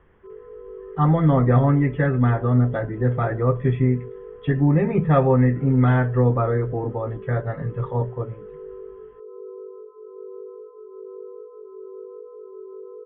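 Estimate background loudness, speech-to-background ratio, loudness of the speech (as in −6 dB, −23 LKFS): −40.0 LKFS, 19.5 dB, −20.5 LKFS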